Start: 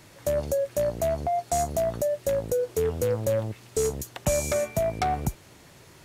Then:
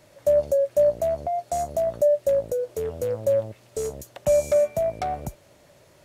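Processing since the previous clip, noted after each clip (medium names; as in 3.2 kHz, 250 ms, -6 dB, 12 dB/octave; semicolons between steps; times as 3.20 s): peaking EQ 590 Hz +13.5 dB 0.4 oct; trim -6 dB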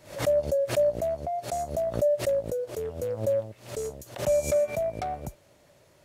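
swell ahead of each attack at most 130 dB/s; trim -4.5 dB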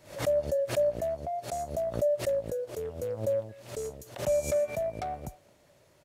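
speakerphone echo 220 ms, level -21 dB; trim -3 dB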